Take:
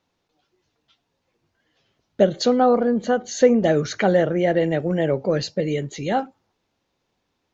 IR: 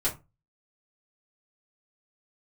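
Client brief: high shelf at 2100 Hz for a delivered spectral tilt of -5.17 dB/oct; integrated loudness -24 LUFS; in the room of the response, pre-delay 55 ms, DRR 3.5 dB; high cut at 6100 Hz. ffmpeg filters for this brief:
-filter_complex "[0:a]lowpass=6.1k,highshelf=f=2.1k:g=4,asplit=2[a][b];[1:a]atrim=start_sample=2205,adelay=55[c];[b][c]afir=irnorm=-1:irlink=0,volume=-11dB[d];[a][d]amix=inputs=2:normalize=0,volume=-5.5dB"

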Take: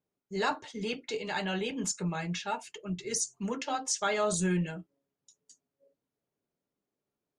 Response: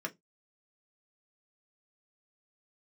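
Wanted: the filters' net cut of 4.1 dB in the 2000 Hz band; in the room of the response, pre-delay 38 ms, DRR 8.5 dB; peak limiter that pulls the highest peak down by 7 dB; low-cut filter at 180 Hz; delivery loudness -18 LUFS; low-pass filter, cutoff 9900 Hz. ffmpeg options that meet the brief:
-filter_complex "[0:a]highpass=180,lowpass=9.9k,equalizer=f=2k:t=o:g=-5.5,alimiter=level_in=2dB:limit=-24dB:level=0:latency=1,volume=-2dB,asplit=2[a][b];[1:a]atrim=start_sample=2205,adelay=38[c];[b][c]afir=irnorm=-1:irlink=0,volume=-11dB[d];[a][d]amix=inputs=2:normalize=0,volume=18dB"

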